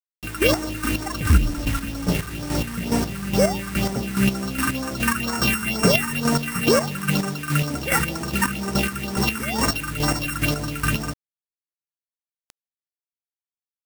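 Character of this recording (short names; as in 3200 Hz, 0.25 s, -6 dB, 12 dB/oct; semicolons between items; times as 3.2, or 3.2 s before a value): a buzz of ramps at a fixed pitch in blocks of 16 samples; phasing stages 4, 2.1 Hz, lowest notch 590–3500 Hz; a quantiser's noise floor 6-bit, dither none; chopped level 2.4 Hz, depth 60%, duty 30%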